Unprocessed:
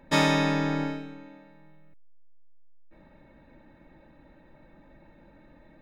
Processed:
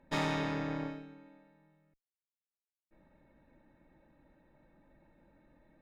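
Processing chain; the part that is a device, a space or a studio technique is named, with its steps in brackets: tube preamp driven hard (tube stage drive 20 dB, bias 0.8; high shelf 4400 Hz -7.5 dB); gain -5 dB

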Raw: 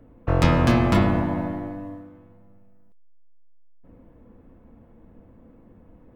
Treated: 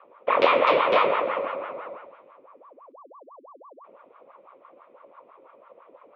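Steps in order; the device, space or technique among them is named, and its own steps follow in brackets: voice changer toy (ring modulator with a swept carrier 710 Hz, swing 65%, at 6 Hz; speaker cabinet 460–3800 Hz, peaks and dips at 540 Hz +9 dB, 800 Hz -8 dB, 1100 Hz +4 dB, 1600 Hz -9 dB, 2400 Hz +8 dB, 3500 Hz +5 dB); gain +1.5 dB

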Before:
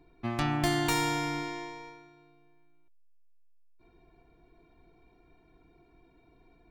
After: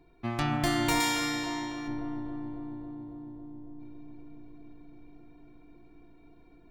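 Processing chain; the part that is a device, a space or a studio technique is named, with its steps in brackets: dub delay into a spring reverb (darkening echo 0.275 s, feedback 83%, low-pass 1400 Hz, level -5 dB; spring tank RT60 3.8 s, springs 35 ms, chirp 60 ms, DRR 10.5 dB); 1–1.88 tilt +2.5 dB/oct

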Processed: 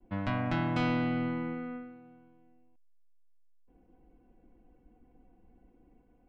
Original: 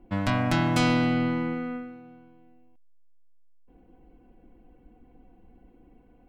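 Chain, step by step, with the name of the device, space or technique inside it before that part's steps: hearing-loss simulation (LPF 3000 Hz 12 dB/oct; expander -55 dBFS); gain -6.5 dB

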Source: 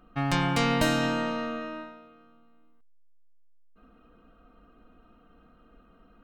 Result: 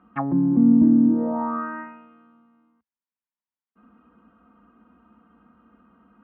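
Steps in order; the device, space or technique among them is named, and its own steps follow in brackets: envelope filter bass rig (envelope low-pass 270–3900 Hz down, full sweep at -22 dBFS; speaker cabinet 66–2000 Hz, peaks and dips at 120 Hz -10 dB, 220 Hz +9 dB, 440 Hz -4 dB, 640 Hz -5 dB, 960 Hz +8 dB)

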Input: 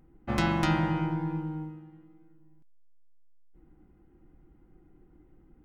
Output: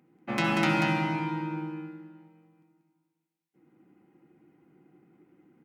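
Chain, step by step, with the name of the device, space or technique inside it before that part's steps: PA in a hall (HPF 150 Hz 24 dB/oct; bell 2400 Hz +7 dB 0.56 oct; echo 0.187 s -4.5 dB; reverb RT60 1.8 s, pre-delay 60 ms, DRR 3.5 dB); gain -1 dB

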